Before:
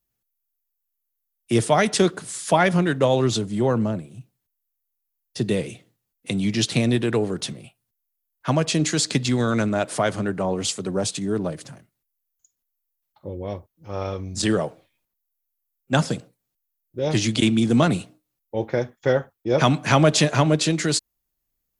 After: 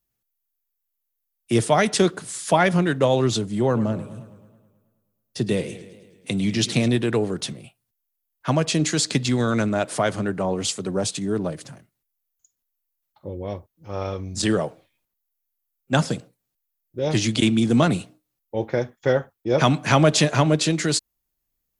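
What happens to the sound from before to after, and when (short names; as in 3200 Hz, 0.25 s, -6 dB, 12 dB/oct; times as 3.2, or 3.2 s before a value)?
3.63–6.88 warbling echo 0.107 s, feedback 62%, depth 116 cents, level -15 dB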